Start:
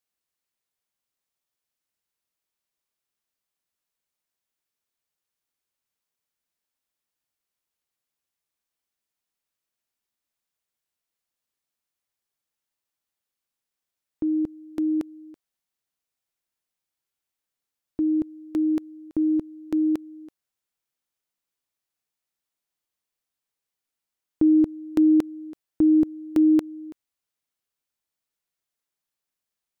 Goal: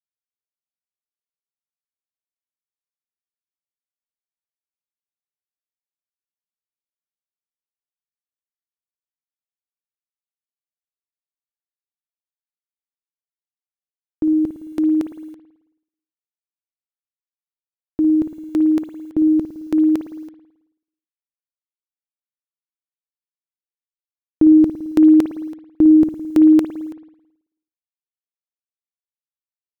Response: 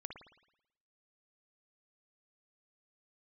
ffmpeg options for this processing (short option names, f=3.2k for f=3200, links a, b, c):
-filter_complex "[0:a]acrusher=bits=10:mix=0:aa=0.000001,asplit=2[a][b];[1:a]atrim=start_sample=2205[c];[b][c]afir=irnorm=-1:irlink=0,volume=6dB[d];[a][d]amix=inputs=2:normalize=0"